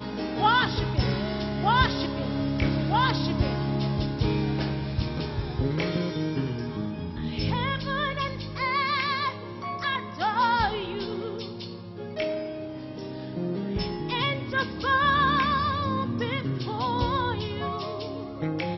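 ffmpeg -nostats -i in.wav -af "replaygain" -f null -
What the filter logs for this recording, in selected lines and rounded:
track_gain = +7.6 dB
track_peak = 0.313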